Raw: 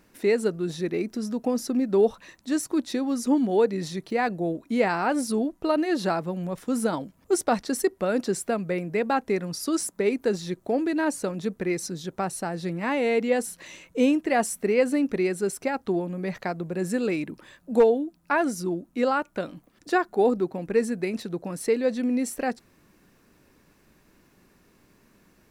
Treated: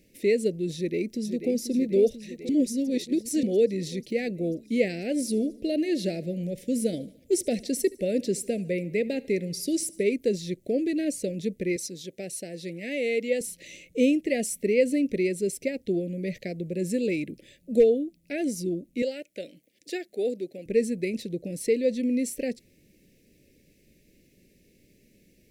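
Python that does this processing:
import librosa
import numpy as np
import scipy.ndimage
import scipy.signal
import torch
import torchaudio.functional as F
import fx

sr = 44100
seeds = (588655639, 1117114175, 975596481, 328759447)

y = fx.echo_throw(x, sr, start_s=0.75, length_s=0.85, ms=490, feedback_pct=75, wet_db=-9.0)
y = fx.echo_feedback(y, sr, ms=74, feedback_pct=57, wet_db=-21.5, at=(5.12, 10.04))
y = fx.highpass(y, sr, hz=410.0, slope=6, at=(11.76, 13.41))
y = fx.highpass(y, sr, hz=680.0, slope=6, at=(19.02, 20.66))
y = fx.edit(y, sr, fx.reverse_span(start_s=2.49, length_s=0.94), tone=tone)
y = scipy.signal.sosfilt(scipy.signal.cheby1(3, 1.0, [560.0, 2100.0], 'bandstop', fs=sr, output='sos'), y)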